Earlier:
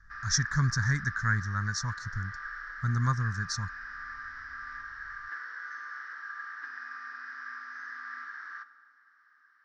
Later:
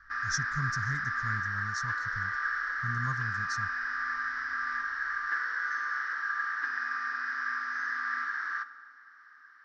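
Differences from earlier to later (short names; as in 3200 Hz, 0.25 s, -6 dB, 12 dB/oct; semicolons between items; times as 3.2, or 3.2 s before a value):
speech -7.5 dB; background +8.5 dB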